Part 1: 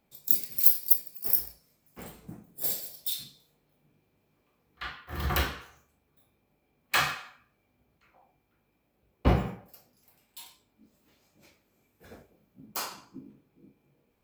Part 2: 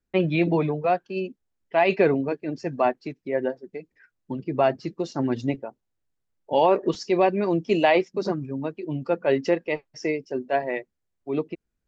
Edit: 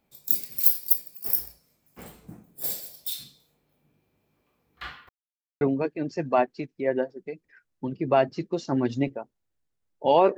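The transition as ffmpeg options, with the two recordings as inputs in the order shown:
-filter_complex "[0:a]apad=whole_dur=10.37,atrim=end=10.37,asplit=2[a][b];[a]atrim=end=5.09,asetpts=PTS-STARTPTS,afade=t=out:st=5.086:d=0.004:c=hsin[c];[b]atrim=start=5.09:end=5.61,asetpts=PTS-STARTPTS,volume=0[d];[1:a]atrim=start=2.08:end=6.84,asetpts=PTS-STARTPTS,afade=t=in:d=0.004:c=hsin[e];[c][d][e]concat=n=3:v=0:a=1"

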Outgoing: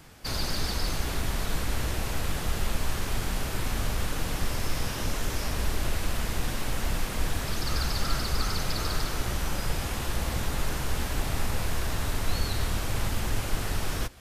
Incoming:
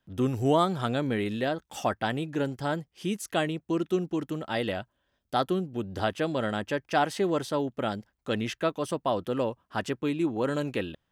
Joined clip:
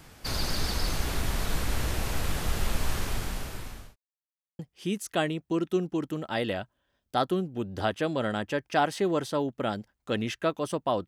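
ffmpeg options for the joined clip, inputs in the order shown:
-filter_complex "[0:a]apad=whole_dur=11.07,atrim=end=11.07,asplit=2[a][b];[a]atrim=end=3.96,asetpts=PTS-STARTPTS,afade=t=out:st=2.97:d=0.99[c];[b]atrim=start=3.96:end=4.59,asetpts=PTS-STARTPTS,volume=0[d];[1:a]atrim=start=2.78:end=9.26,asetpts=PTS-STARTPTS,afade=t=in:d=0.004:c=hsin[e];[c][d][e]concat=n=3:v=0:a=1"

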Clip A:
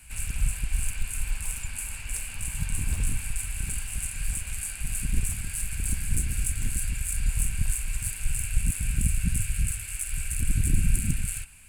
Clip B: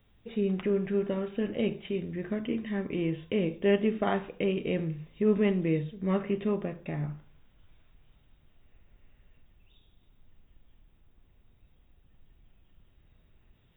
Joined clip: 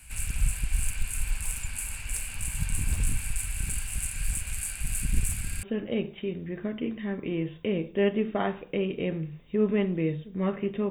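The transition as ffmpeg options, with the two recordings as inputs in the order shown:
-filter_complex "[0:a]apad=whole_dur=10.9,atrim=end=10.9,asplit=3[a][b][c];[a]atrim=end=5.512[d];[b]atrim=start=5.448:end=5.512[e];[c]atrim=start=5.448:end=5.512[f];[1:a]atrim=start=1.298:end=6.57[g];[d][e]acrossfade=d=0.004:c1=hsin:c2=hsin[h];[h][f]acrossfade=d=0.004:c1=hsin:c2=hsin[i];[i][g]acrossfade=d=0.004:c1=hsin:c2=hsin"

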